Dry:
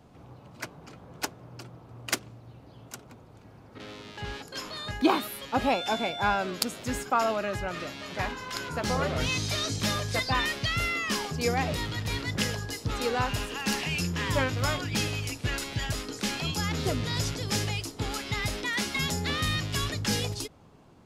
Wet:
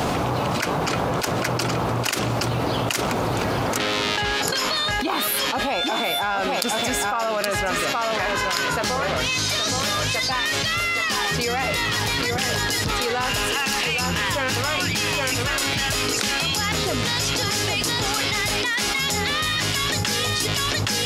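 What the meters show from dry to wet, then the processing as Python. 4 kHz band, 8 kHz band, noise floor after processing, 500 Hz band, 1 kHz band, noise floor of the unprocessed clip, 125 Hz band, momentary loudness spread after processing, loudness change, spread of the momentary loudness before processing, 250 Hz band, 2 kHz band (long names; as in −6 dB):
+10.5 dB, +10.5 dB, −24 dBFS, +7.5 dB, +8.0 dB, −52 dBFS, +4.0 dB, 2 LU, +7.5 dB, 14 LU, +4.5 dB, +9.5 dB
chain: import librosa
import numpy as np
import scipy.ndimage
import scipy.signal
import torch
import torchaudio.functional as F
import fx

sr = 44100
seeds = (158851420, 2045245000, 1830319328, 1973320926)

p1 = fx.low_shelf(x, sr, hz=350.0, db=-11.0)
p2 = p1 + fx.echo_single(p1, sr, ms=820, db=-7.5, dry=0)
y = fx.env_flatten(p2, sr, amount_pct=100)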